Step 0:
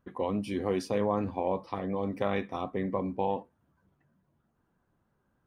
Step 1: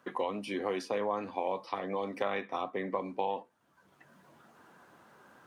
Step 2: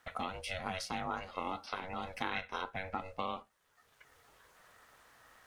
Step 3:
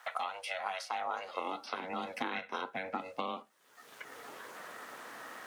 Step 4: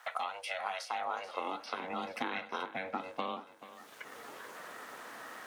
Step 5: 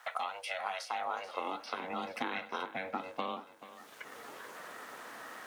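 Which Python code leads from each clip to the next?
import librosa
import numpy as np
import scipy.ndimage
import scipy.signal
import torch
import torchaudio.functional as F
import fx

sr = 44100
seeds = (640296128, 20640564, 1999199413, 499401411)

y1 = fx.weighting(x, sr, curve='A')
y1 = fx.band_squash(y1, sr, depth_pct=70)
y2 = y1 * np.sin(2.0 * np.pi * 280.0 * np.arange(len(y1)) / sr)
y2 = fx.tilt_shelf(y2, sr, db=-7.0, hz=1400.0)
y2 = y2 * librosa.db_to_amplitude(1.0)
y3 = fx.filter_sweep_highpass(y2, sr, from_hz=790.0, to_hz=250.0, start_s=0.88, end_s=1.77, q=1.5)
y3 = fx.band_squash(y3, sr, depth_pct=70)
y4 = fx.echo_feedback(y3, sr, ms=434, feedback_pct=47, wet_db=-15.5)
y5 = fx.dmg_noise_colour(y4, sr, seeds[0], colour='white', level_db=-79.0)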